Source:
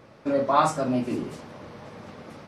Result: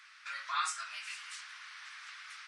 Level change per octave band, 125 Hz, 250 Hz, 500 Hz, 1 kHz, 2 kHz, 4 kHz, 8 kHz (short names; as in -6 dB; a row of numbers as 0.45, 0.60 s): under -40 dB, under -40 dB, under -40 dB, -14.0 dB, 0.0 dB, 0.0 dB, -1.0 dB